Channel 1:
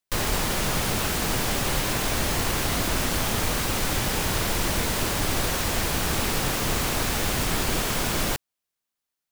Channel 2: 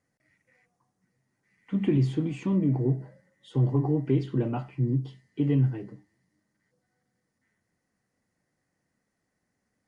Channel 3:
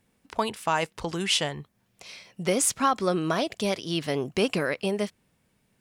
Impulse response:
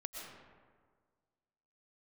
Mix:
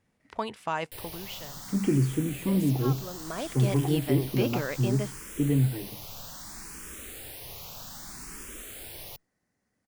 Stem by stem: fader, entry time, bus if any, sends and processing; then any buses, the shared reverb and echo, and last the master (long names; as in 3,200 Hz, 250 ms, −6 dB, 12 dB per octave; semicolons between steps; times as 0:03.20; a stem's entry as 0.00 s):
−18.0 dB, 0.80 s, no send, high-shelf EQ 5,200 Hz +10 dB; frequency shifter mixed with the dry sound +0.63 Hz
−0.5 dB, 0.00 s, no send, no processing
0:00.94 −5 dB → 0:01.36 −16.5 dB → 0:03.17 −16.5 dB → 0:03.46 −5.5 dB, 0.00 s, no send, high-shelf EQ 6,400 Hz −11.5 dB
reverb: not used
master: no processing